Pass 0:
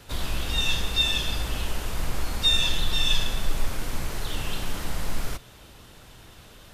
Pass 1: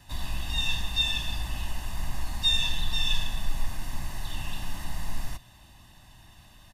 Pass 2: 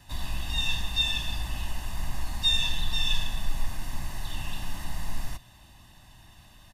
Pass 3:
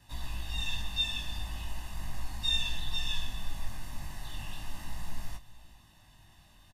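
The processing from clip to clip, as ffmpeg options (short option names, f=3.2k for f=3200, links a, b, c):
-af "aecho=1:1:1.1:0.86,volume=-8dB"
-af anull
-af "flanger=delay=17.5:depth=4.4:speed=0.37,aecho=1:1:395:0.0944,volume=-3dB"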